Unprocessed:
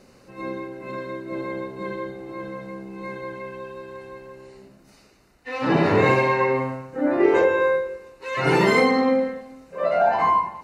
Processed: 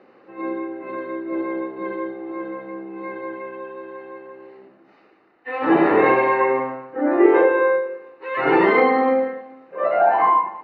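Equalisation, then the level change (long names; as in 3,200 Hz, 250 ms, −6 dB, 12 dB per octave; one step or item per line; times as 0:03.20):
loudspeaker in its box 240–3,200 Hz, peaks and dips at 330 Hz +10 dB, 480 Hz +5 dB, 790 Hz +8 dB, 1,200 Hz +7 dB, 1,800 Hz +6 dB
−2.5 dB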